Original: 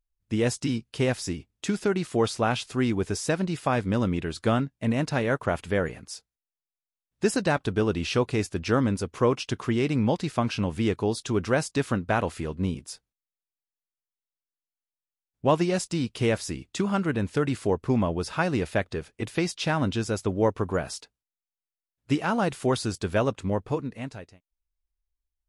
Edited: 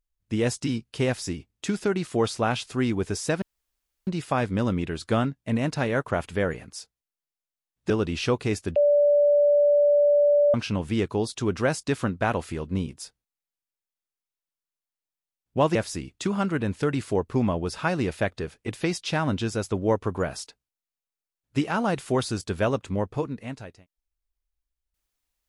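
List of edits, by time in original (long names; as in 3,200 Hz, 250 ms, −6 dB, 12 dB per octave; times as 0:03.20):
0:03.42: splice in room tone 0.65 s
0:07.25–0:07.78: remove
0:08.64–0:10.42: beep over 582 Hz −15.5 dBFS
0:15.63–0:16.29: remove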